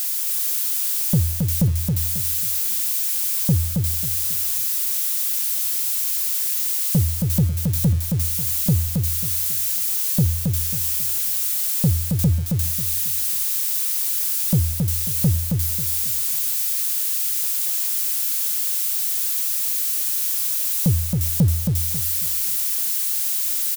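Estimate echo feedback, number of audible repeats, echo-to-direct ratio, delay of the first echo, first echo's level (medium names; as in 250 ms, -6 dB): 30%, 3, -3.5 dB, 271 ms, -4.0 dB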